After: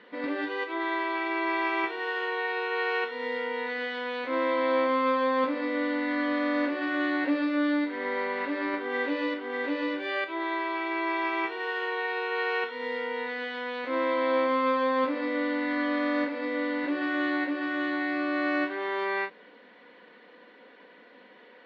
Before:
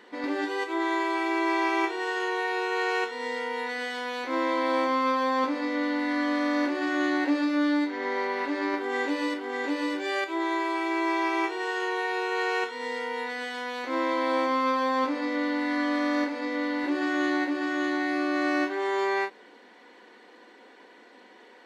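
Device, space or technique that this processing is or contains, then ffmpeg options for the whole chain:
guitar cabinet: -af "highpass=100,equalizer=f=170:t=q:w=4:g=9,equalizer=f=360:t=q:w=4:g=-8,equalizer=f=520:t=q:w=4:g=4,equalizer=f=820:t=q:w=4:g=-7,lowpass=f=3700:w=0.5412,lowpass=f=3700:w=1.3066"

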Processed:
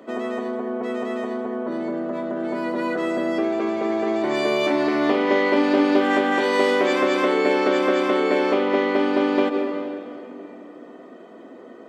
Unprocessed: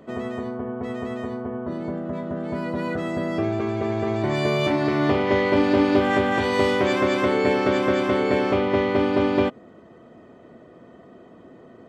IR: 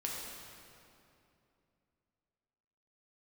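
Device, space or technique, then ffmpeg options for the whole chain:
ducked reverb: -filter_complex "[0:a]asplit=3[s0][s1][s2];[1:a]atrim=start_sample=2205[s3];[s1][s3]afir=irnorm=-1:irlink=0[s4];[s2]apad=whole_len=524301[s5];[s4][s5]sidechaincompress=threshold=0.0355:ratio=8:attack=16:release=107,volume=0.841[s6];[s0][s6]amix=inputs=2:normalize=0,highpass=f=240:w=0.5412,highpass=f=240:w=1.3066"

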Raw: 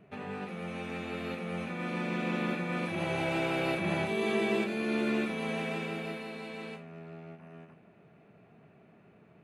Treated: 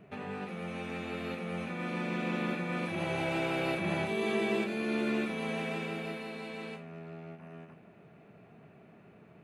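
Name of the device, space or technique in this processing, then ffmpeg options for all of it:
parallel compression: -filter_complex "[0:a]asplit=2[s0][s1];[s1]acompressor=threshold=0.00447:ratio=6,volume=0.708[s2];[s0][s2]amix=inputs=2:normalize=0,volume=0.794"

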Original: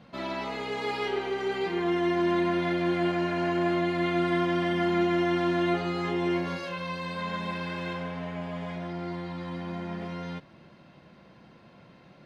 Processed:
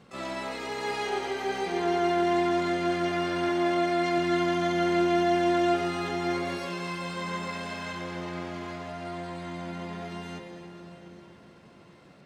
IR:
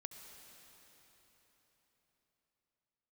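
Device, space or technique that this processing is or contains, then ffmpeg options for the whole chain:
shimmer-style reverb: -filter_complex "[0:a]asplit=2[s0][s1];[s1]asetrate=88200,aresample=44100,atempo=0.5,volume=0.501[s2];[s0][s2]amix=inputs=2:normalize=0[s3];[1:a]atrim=start_sample=2205[s4];[s3][s4]afir=irnorm=-1:irlink=0,asettb=1/sr,asplit=3[s5][s6][s7];[s5]atrim=end=3.494[s8];[s6]atrim=start=3.49:end=4.18,asetpts=PTS-STARTPTS,afade=t=in:d=0.004:c=qsin,afade=t=out:st=0.686:d=0.004:c=qsin,highpass=110[s9];[s7]atrim=start=4.176[s10];[s8][s9]acrossfade=d=0.004:c1=hsin:c2=qsin[s11];[s11][s10]acrossfade=d=0.004:c1=qsin:c2=hsin,volume=1.41"

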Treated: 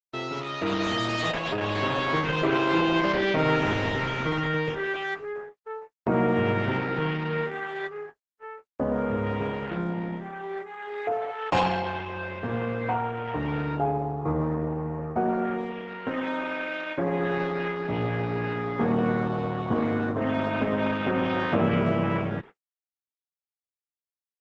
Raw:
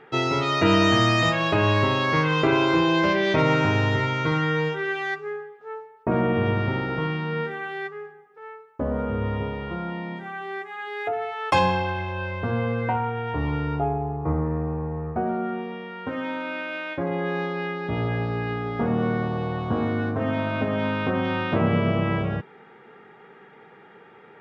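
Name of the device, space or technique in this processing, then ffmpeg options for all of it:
video call: -filter_complex "[0:a]asettb=1/sr,asplit=3[s0][s1][s2];[s0]atrim=end=9.774[s3];[s1]atrim=start=9.77:end=11.57,asetpts=PTS-STARTPTS,afade=t=in:d=0.004:c=qsin,afade=t=out:st=1.796:d=0.004:c=qsin,tiltshelf=f=820:g=4.5[s4];[s2]atrim=start=11.566[s5];[s3][s4]acrossfade=d=0.004:c1=hsin:c2=qsin[s6];[s6][s5]acrossfade=d=0.004:c1=qsin:c2=hsin,highpass=130,dynaudnorm=f=320:g=11:m=2.99,agate=range=0.00112:threshold=0.0251:ratio=16:detection=peak,volume=0.376" -ar 48000 -c:a libopus -b:a 12k

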